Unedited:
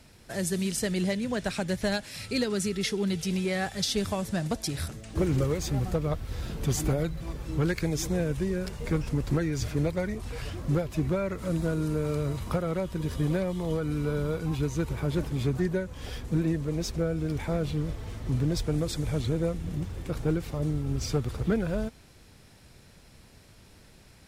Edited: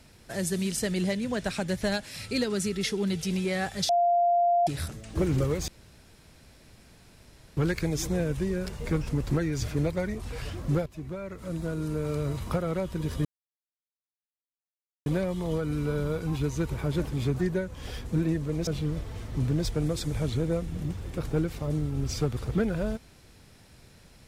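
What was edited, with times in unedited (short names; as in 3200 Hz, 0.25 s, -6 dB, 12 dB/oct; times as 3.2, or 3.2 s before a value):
3.89–4.67 bleep 696 Hz -19.5 dBFS
5.68–7.57 room tone
10.86–12.34 fade in linear, from -13.5 dB
13.25 insert silence 1.81 s
16.86–17.59 cut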